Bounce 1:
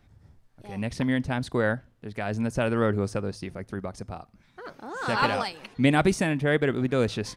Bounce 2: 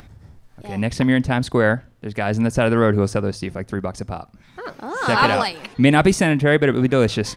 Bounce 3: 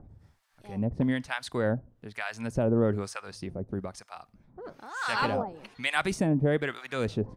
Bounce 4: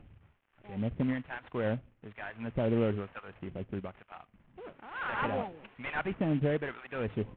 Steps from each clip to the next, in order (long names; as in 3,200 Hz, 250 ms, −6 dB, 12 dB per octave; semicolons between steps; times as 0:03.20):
in parallel at −2 dB: brickwall limiter −14.5 dBFS, peak gain reduction 7 dB; on the sum: upward compression, threshold −42 dBFS; level +3.5 dB
two-band tremolo in antiphase 1.1 Hz, depth 100%, crossover 840 Hz; level −6 dB
variable-slope delta modulation 16 kbit/s; level −3.5 dB